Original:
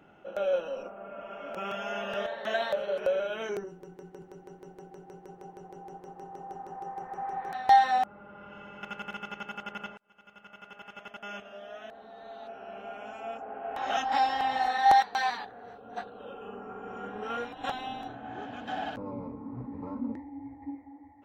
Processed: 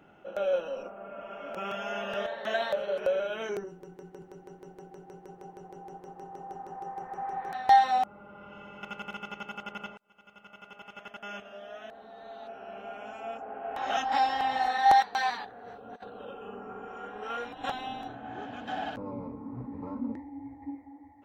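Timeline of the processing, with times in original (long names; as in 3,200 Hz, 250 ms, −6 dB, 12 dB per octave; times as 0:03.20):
0:07.80–0:10.97: notch filter 1,700 Hz, Q 5
0:15.66–0:16.31: compressor whose output falls as the input rises −43 dBFS, ratio −0.5
0:16.85–0:17.46: parametric band 150 Hz −9.5 dB 2 octaves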